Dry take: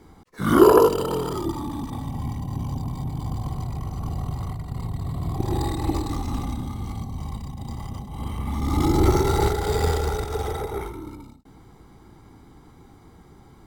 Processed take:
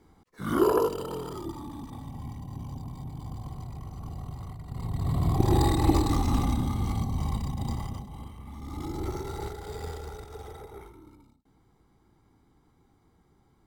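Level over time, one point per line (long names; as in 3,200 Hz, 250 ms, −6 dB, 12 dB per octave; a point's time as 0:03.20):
0:04.58 −9.5 dB
0:05.13 +2.5 dB
0:07.68 +2.5 dB
0:08.16 −7.5 dB
0:08.33 −15 dB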